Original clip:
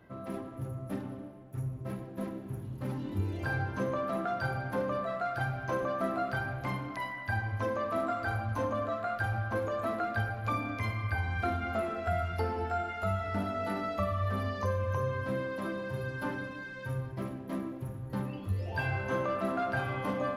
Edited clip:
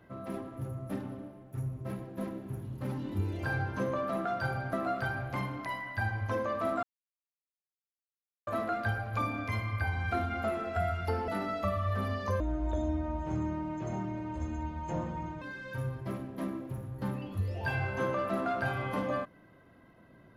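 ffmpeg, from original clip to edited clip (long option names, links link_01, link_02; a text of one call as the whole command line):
ffmpeg -i in.wav -filter_complex "[0:a]asplit=7[link_01][link_02][link_03][link_04][link_05][link_06][link_07];[link_01]atrim=end=4.732[link_08];[link_02]atrim=start=6.038:end=8.14,asetpts=PTS-STARTPTS,afade=type=out:start_time=2.098:duration=0.004:curve=hsin[link_09];[link_03]atrim=start=8.14:end=9.78,asetpts=PTS-STARTPTS,volume=0[link_10];[link_04]atrim=start=9.78:end=12.592,asetpts=PTS-STARTPTS,afade=type=in:duration=0.004:curve=hsin[link_11];[link_05]atrim=start=13.628:end=14.754[link_12];[link_06]atrim=start=14.75:end=16.53,asetpts=PTS-STARTPTS,asetrate=26019,aresample=44100,atrim=end_sample=133047,asetpts=PTS-STARTPTS[link_13];[link_07]atrim=start=16.526[link_14];[link_09][link_10][link_11]concat=n=3:v=0:a=1[link_15];[link_08][link_15]acrossfade=duration=0.004:curve1=hsin:curve2=hsin[link_16];[link_16][link_12]acrossfade=duration=0.004:curve1=hsin:curve2=hsin[link_17];[link_17][link_13]acrossfade=duration=0.004:curve1=hsin:curve2=hsin[link_18];[link_18][link_14]acrossfade=duration=0.004:curve1=hsin:curve2=hsin" out.wav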